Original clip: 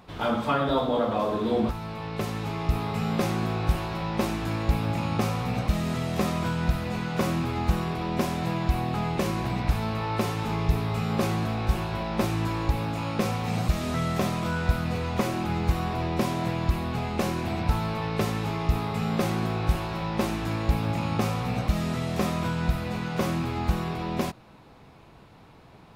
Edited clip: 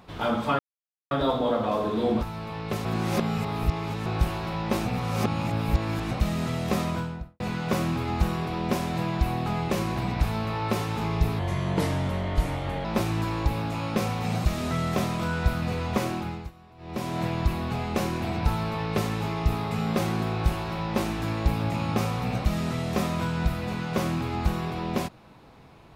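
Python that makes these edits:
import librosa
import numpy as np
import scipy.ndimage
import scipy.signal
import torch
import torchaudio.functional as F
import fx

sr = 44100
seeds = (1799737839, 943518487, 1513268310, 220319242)

y = fx.studio_fade_out(x, sr, start_s=6.31, length_s=0.57)
y = fx.edit(y, sr, fx.insert_silence(at_s=0.59, length_s=0.52),
    fx.reverse_span(start_s=2.33, length_s=1.21),
    fx.reverse_span(start_s=4.34, length_s=1.25),
    fx.speed_span(start_s=10.87, length_s=1.21, speed=0.83),
    fx.fade_down_up(start_s=15.31, length_s=1.14, db=-23.0, fade_s=0.44), tone=tone)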